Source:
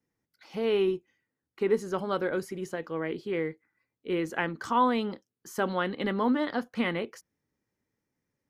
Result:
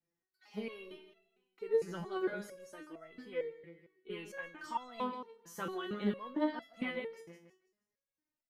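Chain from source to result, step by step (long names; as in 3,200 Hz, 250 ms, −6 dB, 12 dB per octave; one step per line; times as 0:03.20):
repeating echo 161 ms, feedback 39%, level −13.5 dB
step-sequenced resonator 4.4 Hz 170–670 Hz
level +4.5 dB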